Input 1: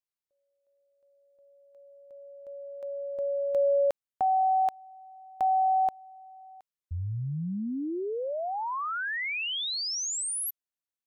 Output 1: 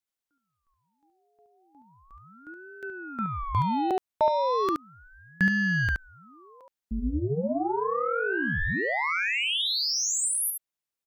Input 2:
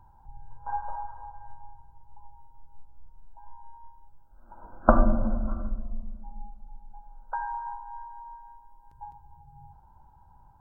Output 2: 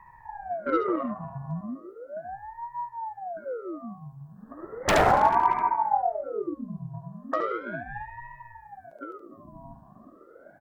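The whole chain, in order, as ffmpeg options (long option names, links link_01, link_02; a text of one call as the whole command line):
ffmpeg -i in.wav -filter_complex "[0:a]aeval=exprs='0.112*(abs(mod(val(0)/0.112+3,4)-2)-1)':channel_layout=same,aeval=exprs='0.112*(cos(1*acos(clip(val(0)/0.112,-1,1)))-cos(1*PI/2))+0.000891*(cos(3*acos(clip(val(0)/0.112,-1,1)))-cos(3*PI/2))+0.00224*(cos(5*acos(clip(val(0)/0.112,-1,1)))-cos(5*PI/2))+0.00447*(cos(7*acos(clip(val(0)/0.112,-1,1)))-cos(7*PI/2))':channel_layout=same,asplit=2[link_01][link_02];[link_02]aecho=0:1:72:0.562[link_03];[link_01][link_03]amix=inputs=2:normalize=0,aeval=exprs='val(0)*sin(2*PI*550*n/s+550*0.75/0.36*sin(2*PI*0.36*n/s))':channel_layout=same,volume=7dB" out.wav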